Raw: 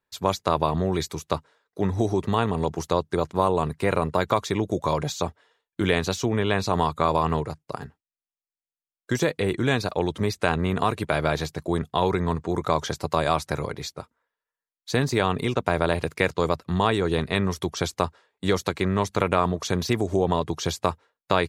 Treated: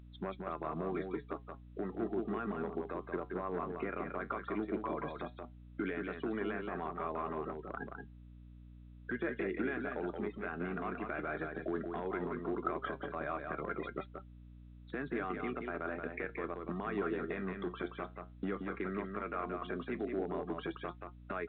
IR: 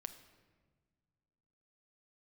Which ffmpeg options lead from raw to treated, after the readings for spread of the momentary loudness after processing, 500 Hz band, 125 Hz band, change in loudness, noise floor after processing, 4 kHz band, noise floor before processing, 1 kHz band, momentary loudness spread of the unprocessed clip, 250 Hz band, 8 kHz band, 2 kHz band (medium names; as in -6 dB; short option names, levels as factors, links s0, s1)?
9 LU, -14.0 dB, -20.0 dB, -14.0 dB, -54 dBFS, -25.5 dB, under -85 dBFS, -15.0 dB, 7 LU, -12.0 dB, under -40 dB, -11.5 dB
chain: -af "afftfilt=real='re*gte(hypot(re,im),0.0224)':imag='im*gte(hypot(re,im),0.0224)':win_size=1024:overlap=0.75,acompressor=threshold=0.0316:ratio=12,alimiter=level_in=1.06:limit=0.0631:level=0:latency=1:release=24,volume=0.944,acontrast=25,flanger=delay=4.7:depth=6.8:regen=72:speed=0.14:shape=triangular,asoftclip=type=hard:threshold=0.0473,highpass=f=220:w=0.5412,highpass=f=220:w=1.3066,equalizer=f=510:t=q:w=4:g=-7,equalizer=f=930:t=q:w=4:g=-10,equalizer=f=1400:t=q:w=4:g=6,lowpass=f=2200:w=0.5412,lowpass=f=2200:w=1.3066,aecho=1:1:177:0.562,aeval=exprs='val(0)+0.002*(sin(2*PI*60*n/s)+sin(2*PI*2*60*n/s)/2+sin(2*PI*3*60*n/s)/3+sin(2*PI*4*60*n/s)/4+sin(2*PI*5*60*n/s)/5)':c=same,volume=1.19" -ar 8000 -c:a pcm_mulaw